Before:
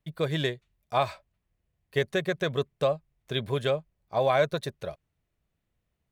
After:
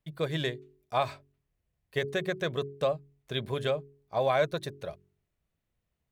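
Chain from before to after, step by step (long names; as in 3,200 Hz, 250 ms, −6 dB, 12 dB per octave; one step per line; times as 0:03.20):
hum removal 46.63 Hz, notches 9
level −2.5 dB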